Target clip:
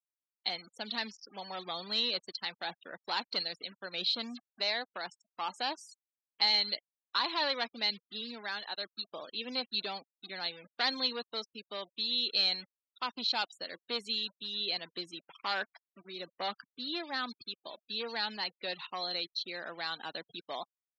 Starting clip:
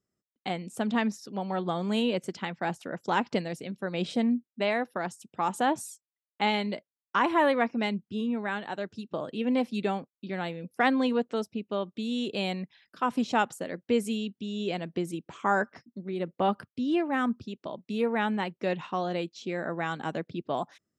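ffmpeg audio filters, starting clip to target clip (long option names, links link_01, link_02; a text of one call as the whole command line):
ffmpeg -i in.wav -af "acrusher=bits=6:mix=0:aa=0.5,asoftclip=type=hard:threshold=-21.5dB,highpass=frequency=1200:poles=1,afftfilt=real='re*gte(hypot(re,im),0.00562)':imag='im*gte(hypot(re,im),0.00562)':win_size=1024:overlap=0.75,lowpass=frequency=4200:width_type=q:width=14,volume=-3.5dB" out.wav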